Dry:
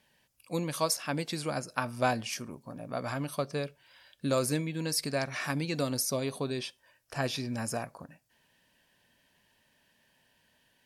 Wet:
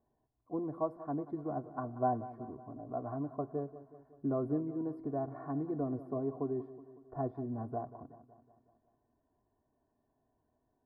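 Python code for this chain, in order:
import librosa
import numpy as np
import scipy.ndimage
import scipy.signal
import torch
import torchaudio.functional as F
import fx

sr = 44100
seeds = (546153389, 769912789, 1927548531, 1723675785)

p1 = scipy.signal.sosfilt(scipy.signal.cheby2(4, 50, 2500.0, 'lowpass', fs=sr, output='sos'), x)
p2 = fx.peak_eq(p1, sr, hz=170.0, db=5.5, octaves=0.76)
p3 = p2 + 0.87 * np.pad(p2, (int(2.8 * sr / 1000.0), 0))[:len(p2)]
p4 = p3 + fx.echo_feedback(p3, sr, ms=185, feedback_pct=57, wet_db=-15.0, dry=0)
y = p4 * 10.0 ** (-5.5 / 20.0)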